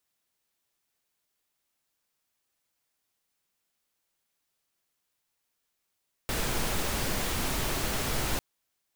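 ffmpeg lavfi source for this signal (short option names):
-f lavfi -i "anoisesrc=c=pink:a=0.172:d=2.1:r=44100:seed=1"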